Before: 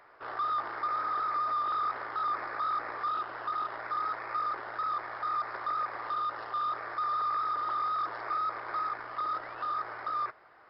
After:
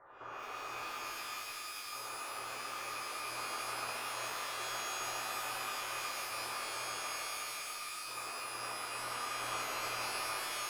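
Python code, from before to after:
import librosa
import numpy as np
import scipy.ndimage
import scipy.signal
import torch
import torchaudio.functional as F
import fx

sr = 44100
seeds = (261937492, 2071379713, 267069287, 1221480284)

y = scipy.signal.sosfilt(scipy.signal.butter(4, 1500.0, 'lowpass', fs=sr, output='sos'), x)
y = fx.comb_fb(y, sr, f0_hz=110.0, decay_s=0.49, harmonics='all', damping=0.0, mix_pct=50)
y = (np.mod(10.0 ** (31.5 / 20.0) * y + 1.0, 2.0) - 1.0) / 10.0 ** (31.5 / 20.0)
y = fx.over_compress(y, sr, threshold_db=-50.0, ratio=-1.0)
y = y + 10.0 ** (-3.0 / 20.0) * np.pad(y, (int(282 * sr / 1000.0), 0))[:len(y)]
y = fx.rev_shimmer(y, sr, seeds[0], rt60_s=3.7, semitones=12, shimmer_db=-2, drr_db=-8.5)
y = F.gain(torch.from_numpy(y), -7.0).numpy()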